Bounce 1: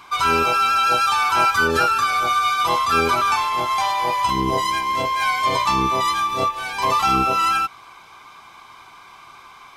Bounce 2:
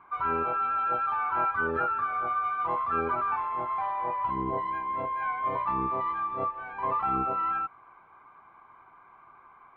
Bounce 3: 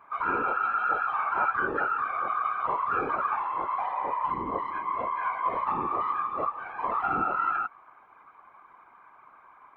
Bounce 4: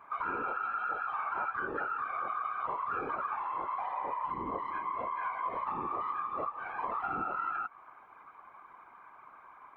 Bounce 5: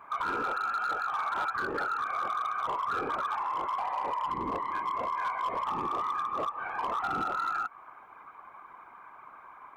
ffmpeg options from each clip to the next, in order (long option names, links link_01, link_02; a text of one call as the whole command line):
ffmpeg -i in.wav -af "lowpass=frequency=1700:width=0.5412,lowpass=frequency=1700:width=1.3066,lowshelf=frequency=200:gain=-3,volume=-9dB" out.wav
ffmpeg -i in.wav -af "lowshelf=frequency=190:gain=-9,afftfilt=real='hypot(re,im)*cos(2*PI*random(0))':imag='hypot(re,im)*sin(2*PI*random(1))':win_size=512:overlap=0.75,volume=7dB" out.wav
ffmpeg -i in.wav -af "acompressor=threshold=-34dB:ratio=3" out.wav
ffmpeg -i in.wav -af "asoftclip=type=hard:threshold=-30dB,volume=4dB" out.wav